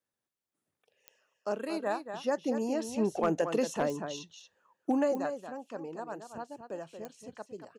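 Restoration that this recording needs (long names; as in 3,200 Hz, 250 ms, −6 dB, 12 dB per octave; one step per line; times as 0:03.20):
clipped peaks rebuilt −19 dBFS
click removal
echo removal 230 ms −8.5 dB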